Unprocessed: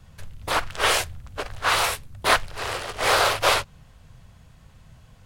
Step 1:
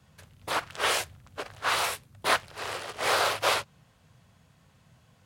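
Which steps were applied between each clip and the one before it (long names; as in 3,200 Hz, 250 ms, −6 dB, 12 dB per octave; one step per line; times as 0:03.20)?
high-pass filter 120 Hz 12 dB per octave
level −5.5 dB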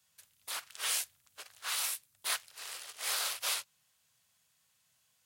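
first-order pre-emphasis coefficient 0.97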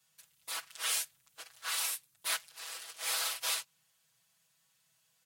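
comb filter 6.1 ms, depth 92%
level −2.5 dB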